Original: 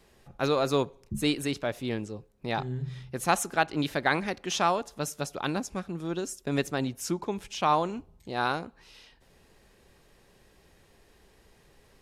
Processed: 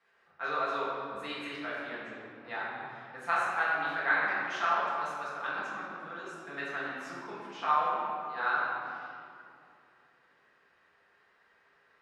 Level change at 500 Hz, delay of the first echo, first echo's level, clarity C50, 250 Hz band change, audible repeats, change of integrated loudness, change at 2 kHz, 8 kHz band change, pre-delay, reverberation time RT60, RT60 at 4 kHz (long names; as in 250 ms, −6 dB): −8.5 dB, no echo audible, no echo audible, −2.5 dB, −14.5 dB, no echo audible, −3.0 dB, +3.0 dB, below −15 dB, 4 ms, 2.5 s, 1.5 s